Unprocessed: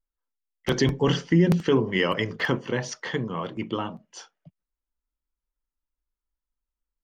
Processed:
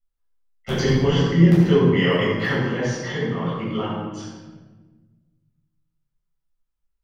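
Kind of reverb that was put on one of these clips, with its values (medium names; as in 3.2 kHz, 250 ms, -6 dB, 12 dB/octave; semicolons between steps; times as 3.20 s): simulated room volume 950 m³, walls mixed, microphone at 6.9 m; trim -9.5 dB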